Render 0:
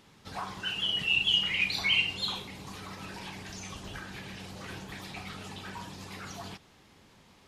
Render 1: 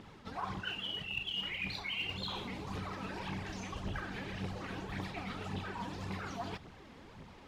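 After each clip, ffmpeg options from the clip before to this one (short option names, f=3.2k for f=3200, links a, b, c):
-af "lowpass=f=1.7k:p=1,areverse,acompressor=threshold=-44dB:ratio=5,areverse,aphaser=in_gain=1:out_gain=1:delay=4.6:decay=0.5:speed=1.8:type=triangular,volume=5.5dB"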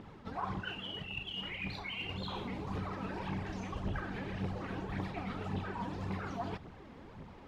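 -af "highshelf=f=2.3k:g=-11,volume=3dB"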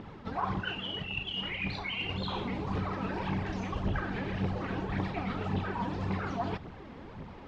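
-af "lowpass=5.8k,volume=5.5dB"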